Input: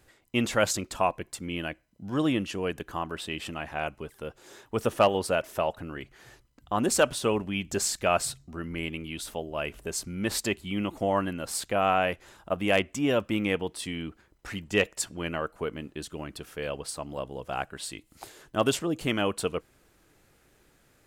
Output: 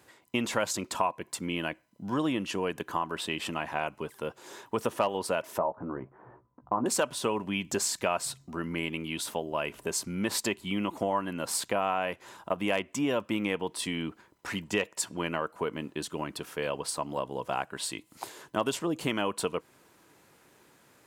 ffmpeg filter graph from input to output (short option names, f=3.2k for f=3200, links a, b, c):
-filter_complex "[0:a]asettb=1/sr,asplit=3[a][b][c];[a]atrim=end=5.584[d];[b]atrim=start=5.58:end=6.86,asetpts=PTS-STARTPTS,afade=t=in:d=0.004:c=qsin,afade=t=out:st=1.276:d=0.004:c=qsin,lowpass=f=1.2k:w=0.5412,lowpass=f=1.2k:w=1.3066,asplit=2[e][f];[f]adelay=16,volume=-7dB[g];[e][g]amix=inputs=2:normalize=0,atrim=end_sample=56448[h];[c]atrim=start=6.856[i];[d][h]acrossfade=d=0.004:c1=hsin:c2=qsin[j];[j][i]acrossfade=d=0.004:c1=qsin:c2=hsin,highpass=140,equalizer=f=980:w=5.9:g=9,acompressor=threshold=-30dB:ratio=3,volume=3dB"